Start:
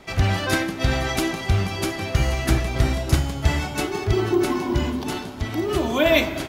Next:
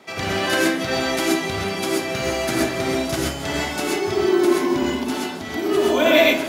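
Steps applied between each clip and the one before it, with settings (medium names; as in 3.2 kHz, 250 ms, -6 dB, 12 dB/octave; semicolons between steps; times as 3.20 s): high-pass 220 Hz 12 dB/octave; gated-style reverb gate 150 ms rising, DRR -3 dB; trim -1 dB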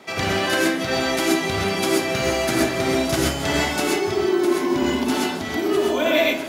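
gain riding within 4 dB 0.5 s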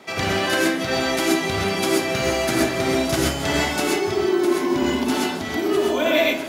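no audible change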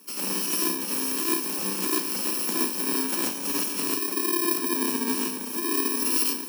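bit-reversed sample order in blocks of 64 samples; rippled Chebyshev high-pass 180 Hz, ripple 3 dB; trim -3 dB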